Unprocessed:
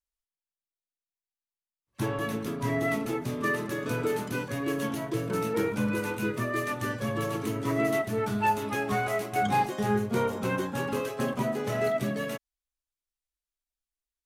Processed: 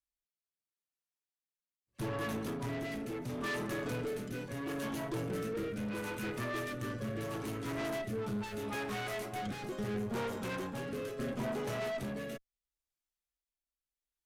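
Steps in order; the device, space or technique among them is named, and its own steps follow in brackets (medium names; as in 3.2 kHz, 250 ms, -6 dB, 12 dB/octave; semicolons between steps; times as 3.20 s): overdriven rotary cabinet (valve stage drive 32 dB, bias 0.45; rotary cabinet horn 0.75 Hz)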